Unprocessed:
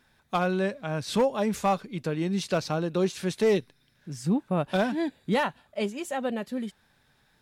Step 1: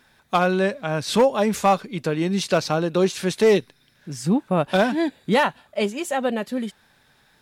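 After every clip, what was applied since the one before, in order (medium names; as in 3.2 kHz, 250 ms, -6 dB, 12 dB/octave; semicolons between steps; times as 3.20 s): bass shelf 190 Hz -6 dB; trim +7.5 dB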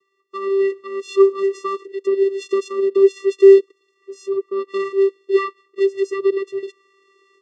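level rider gain up to 14.5 dB; vocoder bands 8, square 391 Hz; trim -2.5 dB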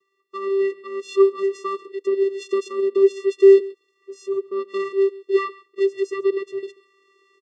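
delay 137 ms -20.5 dB; trim -2.5 dB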